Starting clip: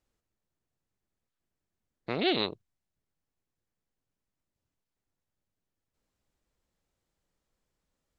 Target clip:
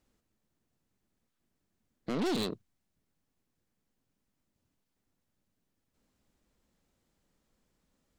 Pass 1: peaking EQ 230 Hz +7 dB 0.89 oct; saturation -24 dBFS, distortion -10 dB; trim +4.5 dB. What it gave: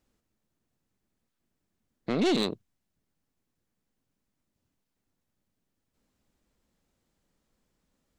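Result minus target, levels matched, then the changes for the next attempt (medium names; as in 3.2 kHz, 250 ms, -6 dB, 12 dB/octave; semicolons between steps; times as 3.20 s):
saturation: distortion -6 dB
change: saturation -33 dBFS, distortion -5 dB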